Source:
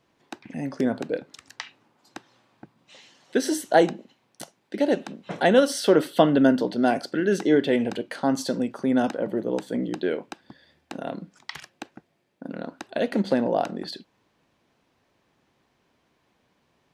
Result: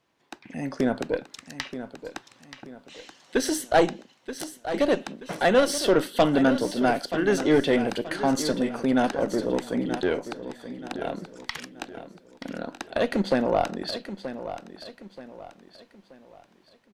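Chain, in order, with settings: 10.19–11.01 s: low-pass that closes with the level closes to 560 Hz, closed at -33.5 dBFS; bass shelf 500 Hz -5 dB; level rider gain up to 6 dB; Chebyshev shaper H 2 -10 dB, 3 -15 dB, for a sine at -1.5 dBFS; saturation -14.5 dBFS, distortion -10 dB; on a send: feedback delay 929 ms, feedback 38%, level -11.5 dB; on the sum: trim +4 dB

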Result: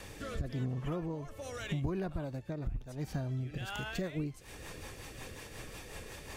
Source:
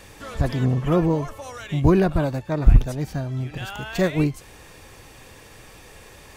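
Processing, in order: compression 10:1, threshold -33 dBFS, peak gain reduction 25.5 dB; rotary cabinet horn 0.9 Hz, later 5.5 Hz, at 3.42 s; trim +1 dB

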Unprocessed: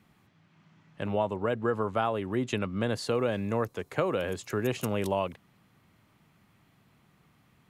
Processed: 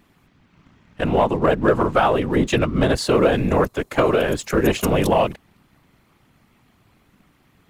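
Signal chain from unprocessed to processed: whisper effect; waveshaping leveller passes 1; trim +8 dB

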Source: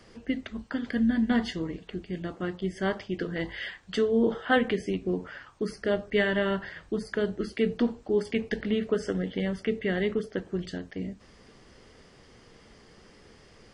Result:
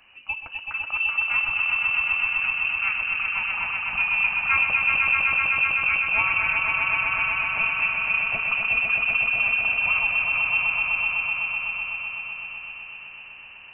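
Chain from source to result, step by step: echo with a slow build-up 126 ms, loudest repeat 5, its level -4.5 dB; frequency inversion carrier 2.9 kHz; trim -1 dB

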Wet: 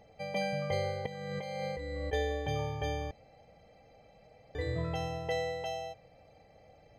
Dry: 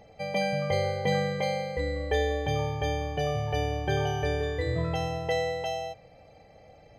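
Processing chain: 1.06–2.13 s: compressor with a negative ratio -33 dBFS, ratio -1; 3.11–4.55 s: room tone; trim -5.5 dB

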